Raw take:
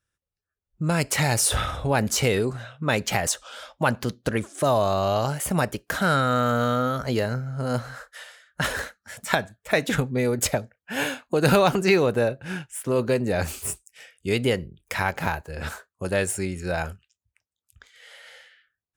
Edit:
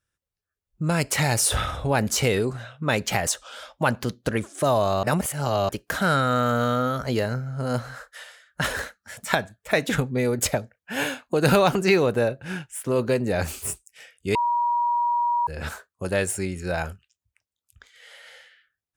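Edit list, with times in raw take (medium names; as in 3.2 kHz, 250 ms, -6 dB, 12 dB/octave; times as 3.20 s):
5.03–5.69 s: reverse
14.35–15.47 s: bleep 956 Hz -19.5 dBFS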